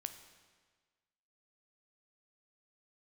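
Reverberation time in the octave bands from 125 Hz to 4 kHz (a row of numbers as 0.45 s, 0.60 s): 1.5 s, 1.4 s, 1.5 s, 1.5 s, 1.4 s, 1.4 s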